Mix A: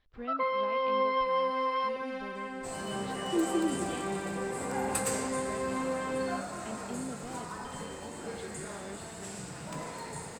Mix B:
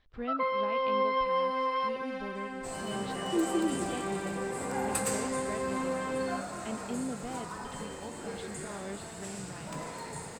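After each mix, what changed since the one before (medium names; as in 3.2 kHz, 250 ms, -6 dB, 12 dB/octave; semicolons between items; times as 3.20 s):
speech +4.0 dB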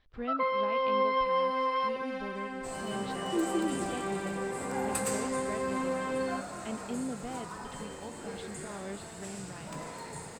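second sound -4.0 dB; reverb: on, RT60 0.40 s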